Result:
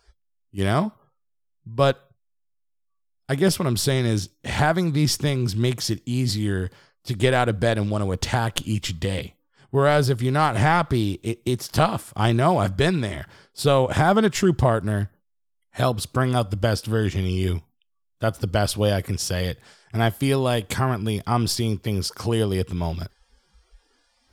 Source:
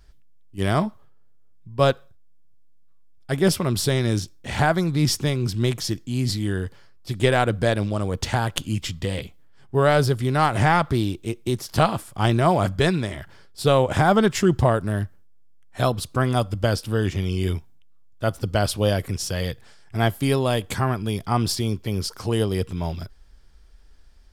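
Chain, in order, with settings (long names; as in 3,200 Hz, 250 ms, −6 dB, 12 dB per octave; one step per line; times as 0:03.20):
noise reduction from a noise print of the clip's start 27 dB
in parallel at −2 dB: downward compressor, threshold −27 dBFS, peak gain reduction 14 dB
on the sum: level −2 dB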